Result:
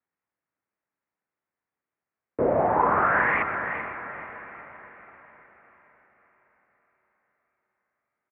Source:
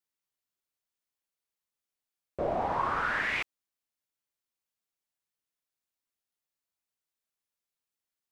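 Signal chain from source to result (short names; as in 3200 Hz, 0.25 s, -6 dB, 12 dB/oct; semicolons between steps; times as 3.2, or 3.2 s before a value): diffused feedback echo 0.466 s, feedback 49%, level -10.5 dB; mistuned SSB -83 Hz 170–2200 Hz; tapped delay 0.126/0.376/0.386 s -12.5/-16.5/-11.5 dB; gain +8 dB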